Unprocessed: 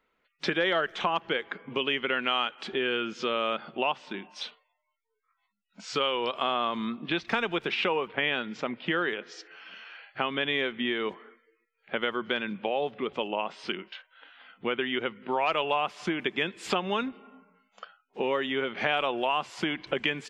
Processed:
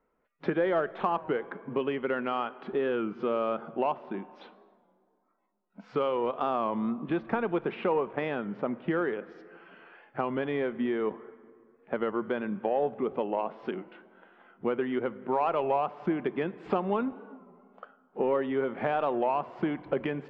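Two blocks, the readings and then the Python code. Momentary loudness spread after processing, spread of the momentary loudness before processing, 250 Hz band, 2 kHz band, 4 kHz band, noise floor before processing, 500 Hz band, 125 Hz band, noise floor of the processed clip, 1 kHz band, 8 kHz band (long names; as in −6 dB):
9 LU, 10 LU, +2.5 dB, −9.0 dB, −18.0 dB, −78 dBFS, +2.0 dB, +2.5 dB, −71 dBFS, −0.5 dB, below −25 dB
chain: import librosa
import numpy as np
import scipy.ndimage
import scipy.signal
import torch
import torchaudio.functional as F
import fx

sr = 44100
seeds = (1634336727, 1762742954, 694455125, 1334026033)

p1 = scipy.signal.sosfilt(scipy.signal.butter(2, 1000.0, 'lowpass', fs=sr, output='sos'), x)
p2 = 10.0 ** (-25.0 / 20.0) * np.tanh(p1 / 10.0 ** (-25.0 / 20.0))
p3 = p1 + (p2 * 10.0 ** (-8.5 / 20.0))
p4 = fx.rev_plate(p3, sr, seeds[0], rt60_s=2.4, hf_ratio=0.55, predelay_ms=0, drr_db=17.5)
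y = fx.record_warp(p4, sr, rpm=33.33, depth_cents=100.0)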